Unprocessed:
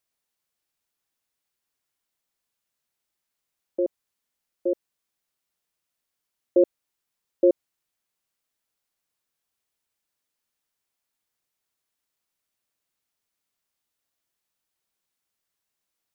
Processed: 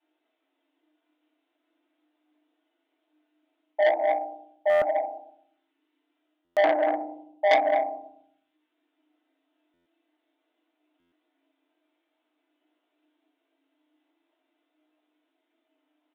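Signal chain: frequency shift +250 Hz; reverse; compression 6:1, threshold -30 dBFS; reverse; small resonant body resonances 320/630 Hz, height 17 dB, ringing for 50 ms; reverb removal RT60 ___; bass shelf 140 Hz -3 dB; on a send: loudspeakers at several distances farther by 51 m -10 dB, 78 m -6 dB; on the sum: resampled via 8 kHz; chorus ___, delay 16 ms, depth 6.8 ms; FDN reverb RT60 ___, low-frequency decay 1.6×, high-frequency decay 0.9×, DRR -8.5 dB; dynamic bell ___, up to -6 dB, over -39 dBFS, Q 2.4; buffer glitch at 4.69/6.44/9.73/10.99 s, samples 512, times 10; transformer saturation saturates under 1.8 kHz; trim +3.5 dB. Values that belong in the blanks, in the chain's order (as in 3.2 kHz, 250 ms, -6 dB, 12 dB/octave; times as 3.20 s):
1.1 s, 0.47 Hz, 0.66 s, 410 Hz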